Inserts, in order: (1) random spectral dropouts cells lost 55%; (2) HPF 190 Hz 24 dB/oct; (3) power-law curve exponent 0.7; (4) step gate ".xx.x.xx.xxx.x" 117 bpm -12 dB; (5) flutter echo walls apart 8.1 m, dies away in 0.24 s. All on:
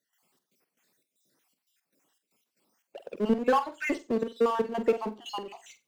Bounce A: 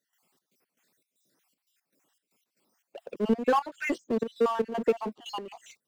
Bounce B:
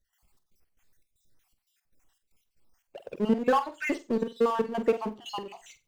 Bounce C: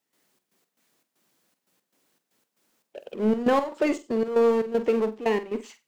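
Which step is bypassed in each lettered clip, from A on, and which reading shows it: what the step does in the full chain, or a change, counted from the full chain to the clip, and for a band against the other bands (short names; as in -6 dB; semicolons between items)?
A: 5, echo-to-direct -11.5 dB to none; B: 2, 125 Hz band +2.0 dB; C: 1, 500 Hz band +4.5 dB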